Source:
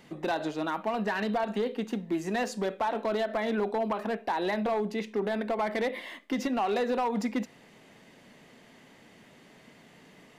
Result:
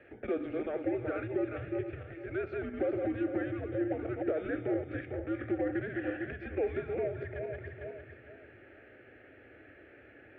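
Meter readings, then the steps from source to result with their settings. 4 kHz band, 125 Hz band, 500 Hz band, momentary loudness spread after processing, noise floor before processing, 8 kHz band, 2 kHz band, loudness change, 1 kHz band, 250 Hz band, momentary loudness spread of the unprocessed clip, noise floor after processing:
below −15 dB, +1.0 dB, −3.5 dB, 22 LU, −56 dBFS, below −30 dB, −6.0 dB, −5.0 dB, −15.0 dB, −3.5 dB, 4 LU, −57 dBFS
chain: feedback delay that plays each chunk backwards 226 ms, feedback 53%, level −6 dB
downward compressor, threshold −32 dBFS, peak gain reduction 9 dB
single-sideband voice off tune −330 Hz 220–2,500 Hz
high-pass filter 150 Hz 12 dB per octave
phaser with its sweep stopped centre 420 Hz, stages 4
level +6.5 dB

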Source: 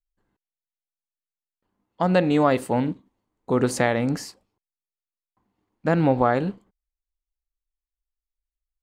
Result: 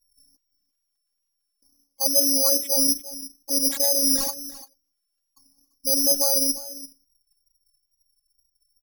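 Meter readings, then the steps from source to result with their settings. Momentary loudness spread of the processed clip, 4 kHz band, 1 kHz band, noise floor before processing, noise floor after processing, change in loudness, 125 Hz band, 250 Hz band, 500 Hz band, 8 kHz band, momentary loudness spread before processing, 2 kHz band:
18 LU, +15.5 dB, −14.0 dB, below −85 dBFS, −78 dBFS, +3.5 dB, below −25 dB, −8.0 dB, −6.5 dB, +20.0 dB, 12 LU, −17.0 dB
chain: spectral envelope exaggerated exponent 3
reversed playback
downward compressor 4 to 1, threshold −35 dBFS, peak gain reduction 17 dB
reversed playback
bad sample-rate conversion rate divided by 8×, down none, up zero stuff
phases set to zero 275 Hz
in parallel at −7 dB: floating-point word with a short mantissa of 2 bits
on the sum: single-tap delay 343 ms −16 dB
tape wow and flutter 32 cents
level +4 dB

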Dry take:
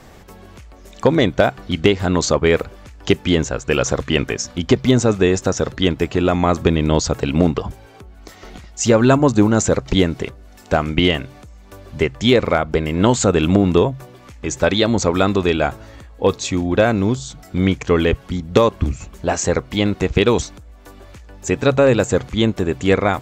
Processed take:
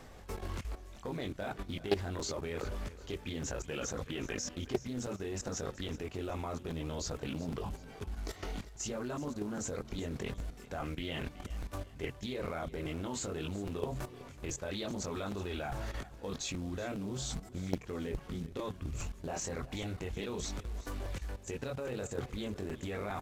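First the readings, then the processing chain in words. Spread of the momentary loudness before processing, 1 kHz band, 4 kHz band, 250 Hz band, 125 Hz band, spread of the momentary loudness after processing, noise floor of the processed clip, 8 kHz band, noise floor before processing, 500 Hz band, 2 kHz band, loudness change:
10 LU, −21.0 dB, −20.0 dB, −22.0 dB, −20.0 dB, 5 LU, −52 dBFS, −16.0 dB, −43 dBFS, −22.5 dB, −21.0 dB, −22.0 dB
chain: multi-voice chorus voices 6, 0.47 Hz, delay 22 ms, depth 2.8 ms
reversed playback
downward compressor 8 to 1, threshold −29 dBFS, peak gain reduction 20 dB
reversed playback
log-companded quantiser 6 bits
output level in coarse steps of 14 dB
on a send: repeating echo 375 ms, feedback 39%, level −17 dB
on the sum: downsampling to 32,000 Hz
regular buffer underruns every 0.41 s, samples 256, repeat, from 0:00.96
highs frequency-modulated by the lows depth 0.57 ms
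level +4 dB

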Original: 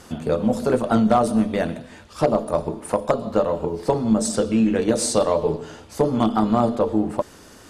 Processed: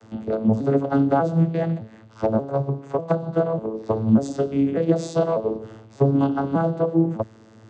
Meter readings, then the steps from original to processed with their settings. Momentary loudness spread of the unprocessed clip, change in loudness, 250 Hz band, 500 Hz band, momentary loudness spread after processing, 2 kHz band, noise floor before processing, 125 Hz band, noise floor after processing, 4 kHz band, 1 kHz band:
8 LU, −1.0 dB, −0.5 dB, −2.0 dB, 8 LU, −4.0 dB, −46 dBFS, +5.0 dB, −49 dBFS, −12.0 dB, −4.0 dB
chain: vocoder with an arpeggio as carrier major triad, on A2, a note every 595 ms

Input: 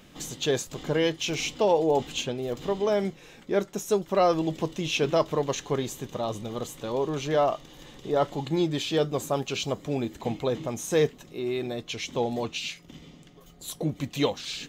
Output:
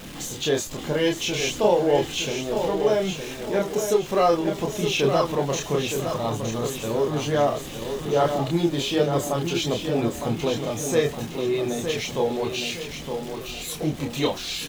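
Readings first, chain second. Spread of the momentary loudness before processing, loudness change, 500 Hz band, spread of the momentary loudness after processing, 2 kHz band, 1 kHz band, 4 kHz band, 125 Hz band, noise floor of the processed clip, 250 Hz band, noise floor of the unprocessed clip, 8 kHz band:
10 LU, +3.5 dB, +3.5 dB, 8 LU, +4.5 dB, +3.5 dB, +4.5 dB, +4.5 dB, −36 dBFS, +4.0 dB, −52 dBFS, +5.5 dB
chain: converter with a step at zero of −37.5 dBFS
multi-voice chorus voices 2, 0.3 Hz, delay 28 ms, depth 1.8 ms
repeating echo 914 ms, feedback 37%, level −7 dB
level +5 dB

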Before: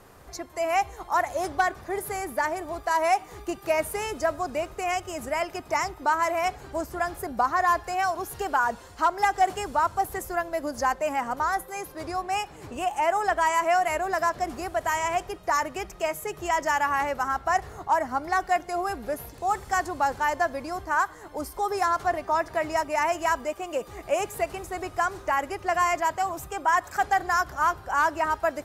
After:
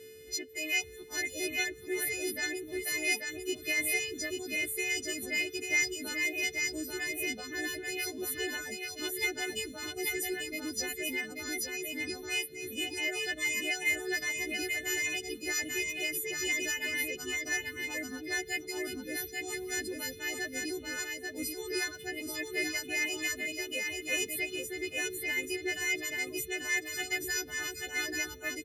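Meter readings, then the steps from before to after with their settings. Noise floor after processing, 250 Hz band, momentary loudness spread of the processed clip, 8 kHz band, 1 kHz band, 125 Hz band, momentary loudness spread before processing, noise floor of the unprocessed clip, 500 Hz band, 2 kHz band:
−48 dBFS, −2.5 dB, 6 LU, +4.0 dB, −26.0 dB, −10.5 dB, 8 LU, −47 dBFS, −10.5 dB, −1.5 dB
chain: every partial snapped to a pitch grid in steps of 3 semitones
drawn EQ curve 220 Hz 0 dB, 340 Hz +6 dB, 690 Hz −18 dB, 1,100 Hz −30 dB, 2,000 Hz +5 dB, 2,900 Hz +6 dB, 7,700 Hz −3 dB
steady tone 440 Hz −42 dBFS
dynamic equaliser 4,200 Hz, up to +3 dB, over −39 dBFS, Q 1.5
reverb reduction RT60 0.61 s
high-pass filter 73 Hz
notch filter 2,700 Hz
single-tap delay 838 ms −3.5 dB
level −6 dB

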